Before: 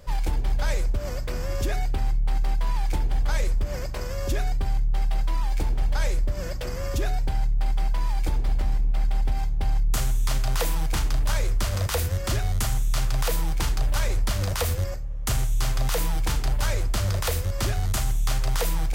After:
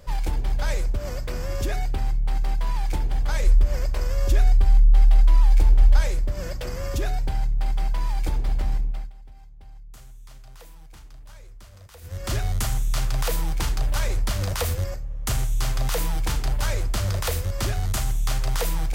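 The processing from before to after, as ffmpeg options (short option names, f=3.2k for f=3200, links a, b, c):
-filter_complex "[0:a]asplit=3[a][b][c];[a]afade=t=out:st=3.44:d=0.02[d];[b]asubboost=boost=3.5:cutoff=67,afade=t=in:st=3.44:d=0.02,afade=t=out:st=5.99:d=0.02[e];[c]afade=t=in:st=5.99:d=0.02[f];[d][e][f]amix=inputs=3:normalize=0,asplit=3[g][h][i];[g]atrim=end=9.12,asetpts=PTS-STARTPTS,afade=t=out:st=8.77:d=0.35:silence=0.0841395[j];[h]atrim=start=9.12:end=12.01,asetpts=PTS-STARTPTS,volume=-21.5dB[k];[i]atrim=start=12.01,asetpts=PTS-STARTPTS,afade=t=in:d=0.35:silence=0.0841395[l];[j][k][l]concat=n=3:v=0:a=1"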